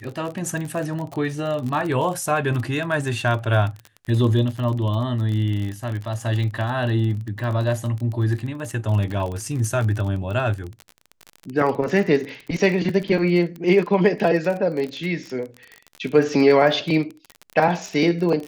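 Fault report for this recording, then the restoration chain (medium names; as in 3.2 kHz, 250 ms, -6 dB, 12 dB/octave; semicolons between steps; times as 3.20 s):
crackle 33 per s -27 dBFS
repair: de-click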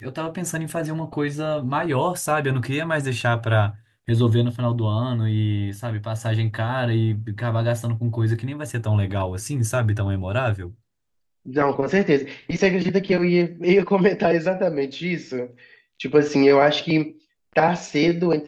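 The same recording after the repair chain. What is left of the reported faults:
nothing left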